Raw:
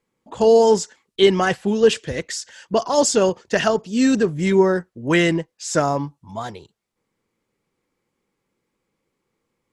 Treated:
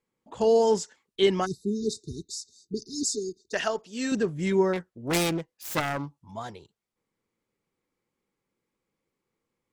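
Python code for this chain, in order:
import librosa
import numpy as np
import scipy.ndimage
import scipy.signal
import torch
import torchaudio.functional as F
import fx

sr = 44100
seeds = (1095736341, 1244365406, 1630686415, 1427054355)

y = fx.self_delay(x, sr, depth_ms=0.65, at=(4.73, 6.2))
y = fx.spec_erase(y, sr, start_s=1.46, length_s=2.07, low_hz=440.0, high_hz=3600.0)
y = fx.peak_eq(y, sr, hz=120.0, db=-14.5, octaves=2.2, at=(3.03, 4.12))
y = y * 10.0 ** (-7.5 / 20.0)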